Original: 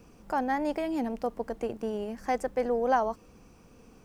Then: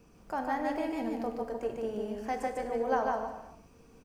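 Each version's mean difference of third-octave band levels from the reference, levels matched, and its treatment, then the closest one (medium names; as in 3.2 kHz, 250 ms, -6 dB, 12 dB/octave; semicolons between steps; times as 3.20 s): 4.5 dB: on a send: delay 148 ms -3 dB; on the sum: gated-style reverb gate 430 ms falling, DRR 5 dB; trim -5.5 dB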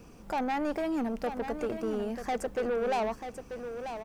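6.0 dB: saturation -29 dBFS, distortion -8 dB; on a send: delay 939 ms -9 dB; on the sum: trim +3 dB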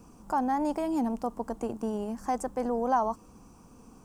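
2.5 dB: graphic EQ 250/500/1000/2000/4000/8000 Hz +4/-5/+8/-9/-4/+7 dB; in parallel at +2 dB: peak limiter -22 dBFS, peak gain reduction 9.5 dB; on the sum: trim -6.5 dB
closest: third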